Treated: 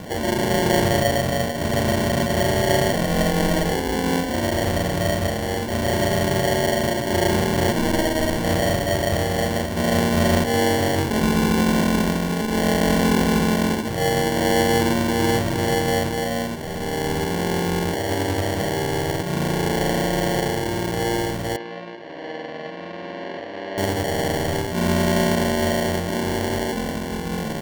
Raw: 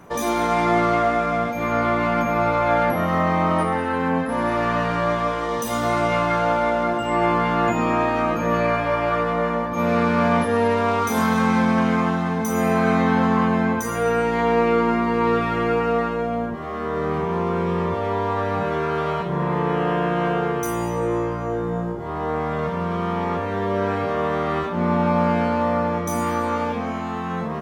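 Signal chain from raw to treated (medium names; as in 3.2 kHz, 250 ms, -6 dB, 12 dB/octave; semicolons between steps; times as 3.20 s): upward compressor, threshold -26 dBFS; sample-and-hold 35×; 21.56–23.78 s: cabinet simulation 410–3400 Hz, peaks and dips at 420 Hz -8 dB, 840 Hz -9 dB, 1.4 kHz -9 dB, 2.1 kHz -5 dB, 3.3 kHz -8 dB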